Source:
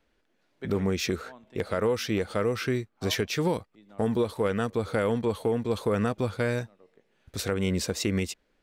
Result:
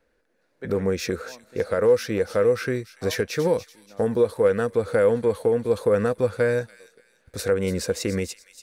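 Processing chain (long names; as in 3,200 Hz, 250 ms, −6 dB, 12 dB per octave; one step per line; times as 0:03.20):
thirty-one-band graphic EQ 500 Hz +11 dB, 1,600 Hz +6 dB, 3,150 Hz −7 dB, 10,000 Hz +5 dB
delay with a high-pass on its return 288 ms, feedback 33%, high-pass 3,200 Hz, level −10 dB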